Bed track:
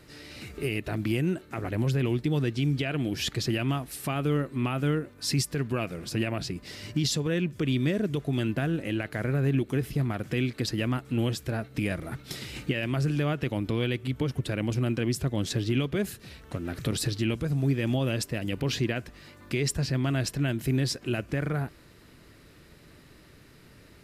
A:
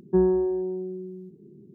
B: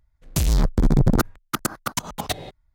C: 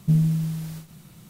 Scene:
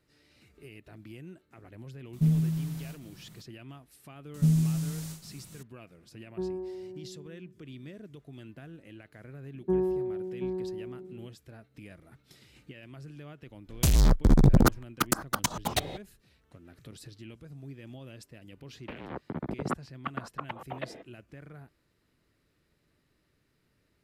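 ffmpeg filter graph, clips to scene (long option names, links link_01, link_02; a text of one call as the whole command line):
ffmpeg -i bed.wav -i cue0.wav -i cue1.wav -i cue2.wav -filter_complex "[3:a]asplit=2[link_01][link_02];[1:a]asplit=2[link_03][link_04];[2:a]asplit=2[link_05][link_06];[0:a]volume=-19dB[link_07];[link_02]equalizer=frequency=7400:width=0.69:gain=9[link_08];[link_04]aecho=1:1:727:0.398[link_09];[link_06]highpass=frequency=280:width_type=q:width=0.5412,highpass=frequency=280:width_type=q:width=1.307,lowpass=frequency=2800:width_type=q:width=0.5176,lowpass=frequency=2800:width_type=q:width=0.7071,lowpass=frequency=2800:width_type=q:width=1.932,afreqshift=-93[link_10];[link_01]atrim=end=1.29,asetpts=PTS-STARTPTS,volume=-5dB,afade=type=in:duration=0.004:curve=hsin,afade=type=out:start_time=1.286:duration=0.004:curve=hsin,adelay=2130[link_11];[link_08]atrim=end=1.29,asetpts=PTS-STARTPTS,volume=-4dB,afade=type=in:duration=0.004:curve=hsin,afade=type=out:start_time=1.286:duration=0.004:curve=hsin,adelay=4340[link_12];[link_03]atrim=end=1.74,asetpts=PTS-STARTPTS,volume=-14dB,afade=type=in:duration=0.004:curve=hsin,afade=type=out:start_time=1.736:duration=0.004:curve=hsin,adelay=6240[link_13];[link_09]atrim=end=1.74,asetpts=PTS-STARTPTS,volume=-6.5dB,afade=type=in:duration=0.004:curve=hsin,afade=type=out:start_time=1.736:duration=0.004:curve=hsin,adelay=9550[link_14];[link_05]atrim=end=2.74,asetpts=PTS-STARTPTS,volume=-2dB,afade=type=in:duration=0.004:curve=hsin,afade=type=out:start_time=2.736:duration=0.004:curve=hsin,adelay=13470[link_15];[link_10]atrim=end=2.74,asetpts=PTS-STARTPTS,volume=-8dB,afade=type=in:duration=0.004:curve=hsin,afade=type=out:start_time=2.736:duration=0.004:curve=hsin,adelay=18520[link_16];[link_07][link_11][link_12][link_13][link_14][link_15][link_16]amix=inputs=7:normalize=0" out.wav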